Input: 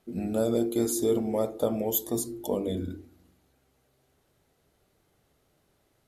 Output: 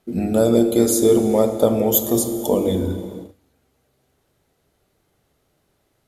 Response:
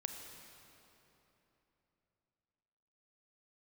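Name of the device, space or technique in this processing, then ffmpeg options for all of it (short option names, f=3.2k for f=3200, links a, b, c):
keyed gated reverb: -filter_complex "[0:a]asplit=3[a][b][c];[1:a]atrim=start_sample=2205[d];[b][d]afir=irnorm=-1:irlink=0[e];[c]apad=whole_len=267989[f];[e][f]sidechaingate=range=-33dB:threshold=-59dB:ratio=16:detection=peak,volume=5dB[g];[a][g]amix=inputs=2:normalize=0,volume=2.5dB"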